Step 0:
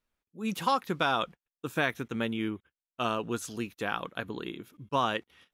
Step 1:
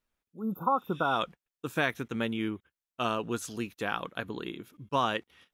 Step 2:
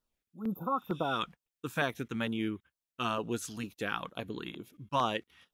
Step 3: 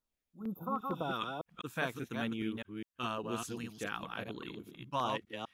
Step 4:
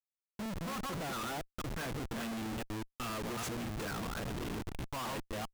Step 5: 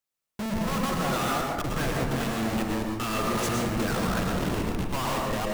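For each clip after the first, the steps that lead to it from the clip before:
spectral replace 0.41–1.13 s, 1.5–12 kHz both
LFO notch saw down 2.2 Hz 310–2500 Hz; trim -1 dB
chunks repeated in reverse 202 ms, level -3.5 dB; trim -5 dB
Schmitt trigger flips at -46.5 dBFS; trim +1 dB
reverberation RT60 1.1 s, pre-delay 97 ms, DRR -0.5 dB; trim +8 dB

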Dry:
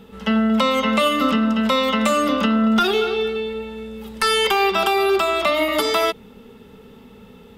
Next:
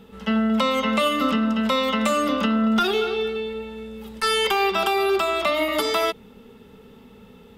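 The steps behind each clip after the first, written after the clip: attacks held to a fixed rise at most 570 dB/s; trim -3 dB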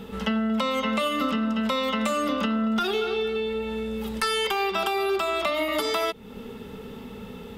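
compression 3:1, threshold -35 dBFS, peak gain reduction 13.5 dB; trim +8 dB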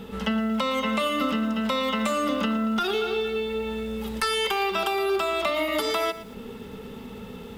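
bit-crushed delay 115 ms, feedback 35%, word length 7-bit, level -14 dB

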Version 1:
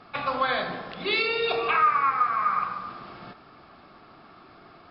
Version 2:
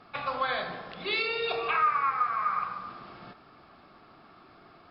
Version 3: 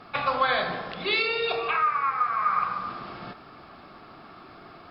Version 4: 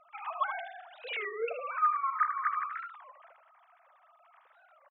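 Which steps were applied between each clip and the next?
dynamic bell 260 Hz, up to -5 dB, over -45 dBFS, Q 1.6; trim -4 dB
gain riding within 4 dB 0.5 s; trim +4 dB
formants replaced by sine waves; delay 77 ms -9.5 dB; warped record 33 1/3 rpm, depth 250 cents; trim -8 dB

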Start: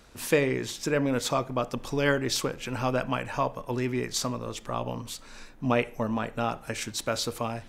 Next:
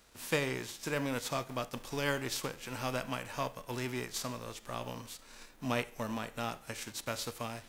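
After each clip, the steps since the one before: formants flattened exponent 0.6; trim -8.5 dB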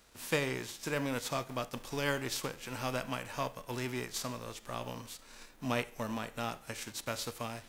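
no audible change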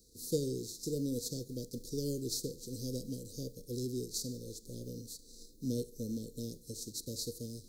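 Chebyshev band-stop 490–4100 Hz, order 5; trim +1.5 dB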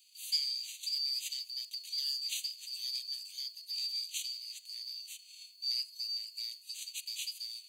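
four frequency bands reordered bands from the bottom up 2341

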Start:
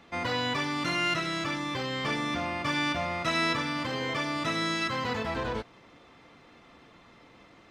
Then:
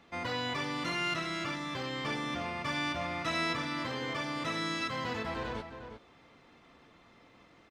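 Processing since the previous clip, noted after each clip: echo from a far wall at 61 m, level -9 dB; trim -5 dB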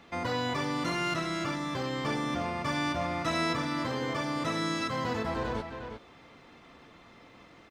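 dynamic bell 2.7 kHz, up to -7 dB, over -48 dBFS, Q 0.79; trim +5.5 dB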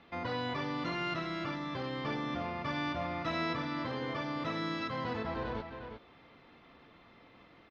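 low-pass 4.5 kHz 24 dB/octave; trim -4.5 dB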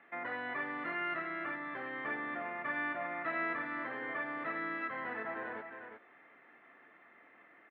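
cabinet simulation 410–2200 Hz, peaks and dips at 500 Hz -6 dB, 970 Hz -6 dB, 1.8 kHz +9 dB

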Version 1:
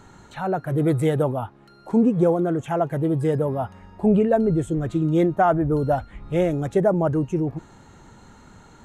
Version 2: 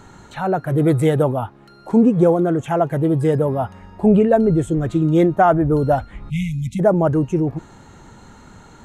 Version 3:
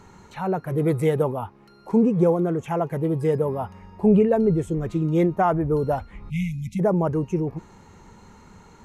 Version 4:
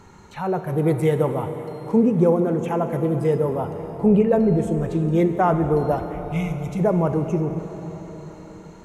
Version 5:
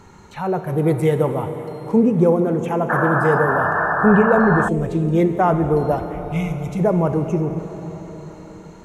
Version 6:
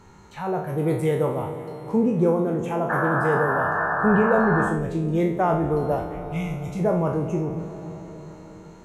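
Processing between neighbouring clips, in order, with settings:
spectral selection erased 6.30–6.80 s, 260–2000 Hz; trim +4.5 dB
rippled EQ curve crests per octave 0.83, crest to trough 6 dB; trim -5.5 dB
plate-style reverb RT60 4.9 s, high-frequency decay 0.8×, DRR 7 dB; trim +1 dB
painted sound noise, 2.89–4.69 s, 560–1800 Hz -22 dBFS; trim +2 dB
spectral sustain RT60 0.50 s; trim -6 dB

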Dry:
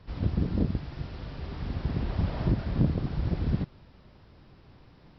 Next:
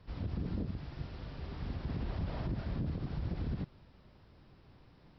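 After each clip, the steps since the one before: peak limiter -22.5 dBFS, peak gain reduction 9 dB; trim -5.5 dB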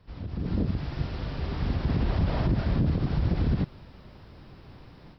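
level rider gain up to 11.5 dB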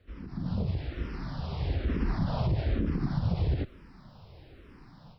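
barber-pole phaser -1.1 Hz

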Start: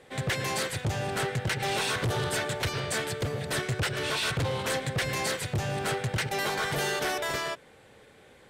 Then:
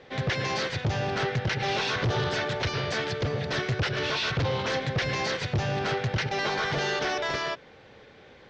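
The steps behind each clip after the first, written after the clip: steep low-pass 6 kHz 48 dB/octave; peak limiter -25 dBFS, peak gain reduction 4 dB; trim +3.5 dB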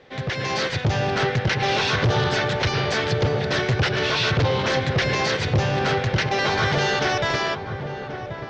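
level rider gain up to 6 dB; filtered feedback delay 1083 ms, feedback 56%, low-pass 1 kHz, level -8 dB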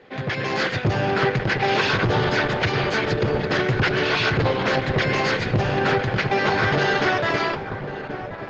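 reverberation RT60 0.70 s, pre-delay 3 ms, DRR 14.5 dB; trim -3.5 dB; Opus 12 kbps 48 kHz

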